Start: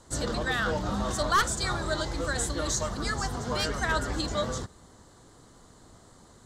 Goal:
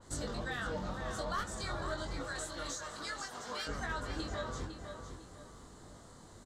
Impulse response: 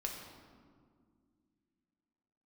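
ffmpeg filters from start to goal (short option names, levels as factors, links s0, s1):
-filter_complex "[0:a]asettb=1/sr,asplit=3[s0][s1][s2];[s0]atrim=end=2.224[s3];[s1]atrim=start=2.22:end=3.67,asetpts=PTS-STARTPTS,afade=t=in:d=0.004:c=qsin,afade=t=out:st=1.446:d=0.004:c=qsin,highpass=f=1400:p=1[s4];[s2]atrim=start=3.666[s5];[s3][s4]acrossfade=d=0.004:c1=hsin:c2=qsin[s6];[s6][s5]acrossfade=d=0.004:c1=qsin:c2=hsin,acompressor=threshold=0.0141:ratio=3,flanger=delay=20:depth=2.8:speed=0.31,asplit=2[s7][s8];[s8]adelay=504,lowpass=f=3800:p=1,volume=0.447,asplit=2[s9][s10];[s10]adelay=504,lowpass=f=3800:p=1,volume=0.35,asplit=2[s11][s12];[s12]adelay=504,lowpass=f=3800:p=1,volume=0.35,asplit=2[s13][s14];[s14]adelay=504,lowpass=f=3800:p=1,volume=0.35[s15];[s7][s9][s11][s13][s15]amix=inputs=5:normalize=0,adynamicequalizer=threshold=0.00158:dfrequency=4000:dqfactor=0.7:tfrequency=4000:tqfactor=0.7:attack=5:release=100:ratio=0.375:range=2:mode=cutabove:tftype=highshelf,volume=1.19"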